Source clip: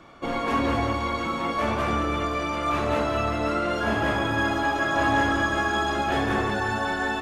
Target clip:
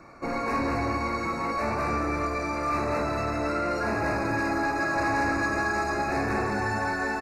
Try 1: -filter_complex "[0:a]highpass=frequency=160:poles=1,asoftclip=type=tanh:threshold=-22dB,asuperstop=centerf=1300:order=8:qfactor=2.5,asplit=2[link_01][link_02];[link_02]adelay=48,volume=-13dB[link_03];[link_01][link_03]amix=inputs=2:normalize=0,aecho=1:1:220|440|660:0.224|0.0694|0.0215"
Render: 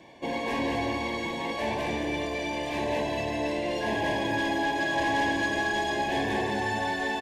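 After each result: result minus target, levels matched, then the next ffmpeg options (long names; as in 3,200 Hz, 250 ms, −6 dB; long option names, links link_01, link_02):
4,000 Hz band +9.0 dB; 125 Hz band −3.5 dB
-filter_complex "[0:a]highpass=frequency=160:poles=1,asoftclip=type=tanh:threshold=-22dB,asuperstop=centerf=3200:order=8:qfactor=2.5,asplit=2[link_01][link_02];[link_02]adelay=48,volume=-13dB[link_03];[link_01][link_03]amix=inputs=2:normalize=0,aecho=1:1:220|440|660:0.224|0.0694|0.0215"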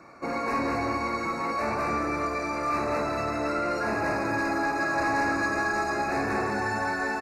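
125 Hz band −4.5 dB
-filter_complex "[0:a]asoftclip=type=tanh:threshold=-22dB,asuperstop=centerf=3200:order=8:qfactor=2.5,asplit=2[link_01][link_02];[link_02]adelay=48,volume=-13dB[link_03];[link_01][link_03]amix=inputs=2:normalize=0,aecho=1:1:220|440|660:0.224|0.0694|0.0215"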